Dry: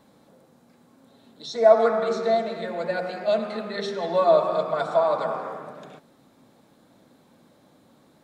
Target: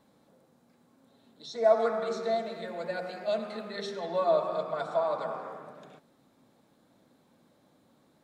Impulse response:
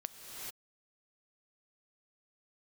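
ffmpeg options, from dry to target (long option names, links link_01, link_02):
-filter_complex "[0:a]asettb=1/sr,asplit=3[link_01][link_02][link_03];[link_01]atrim=end=1.644[link_04];[link_02]atrim=start=1.64:end=4,asetpts=PTS-STARTPTS,afade=type=in:duration=0.004:curve=qsin,afade=type=out:start_time=2.356:duration=0.004:curve=qsin,highshelf=frequency=5100:gain=5.5[link_05];[link_03]atrim=start=3.996[link_06];[link_04][link_05]acrossfade=duration=0.004:curve1=hsin:curve2=qsin[link_07];[link_07][link_06]acrossfade=duration=0.004:curve1=qsin:curve2=hsin,volume=-7.5dB"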